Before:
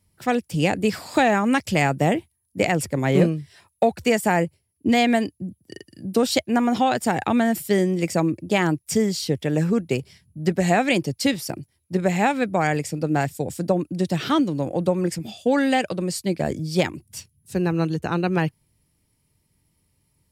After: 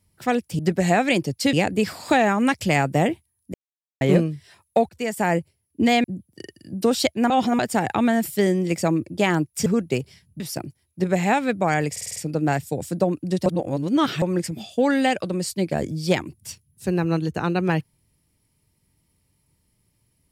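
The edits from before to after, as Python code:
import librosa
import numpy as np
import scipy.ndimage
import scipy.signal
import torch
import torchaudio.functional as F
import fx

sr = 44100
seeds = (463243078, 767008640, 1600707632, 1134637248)

y = fx.edit(x, sr, fx.silence(start_s=2.6, length_s=0.47),
    fx.fade_in_from(start_s=3.95, length_s=0.47, floor_db=-17.0),
    fx.cut(start_s=5.1, length_s=0.26),
    fx.reverse_span(start_s=6.62, length_s=0.29),
    fx.cut(start_s=8.98, length_s=0.67),
    fx.move(start_s=10.39, length_s=0.94, to_s=0.59),
    fx.stutter(start_s=12.84, slice_s=0.05, count=6),
    fx.reverse_span(start_s=14.14, length_s=0.76), tone=tone)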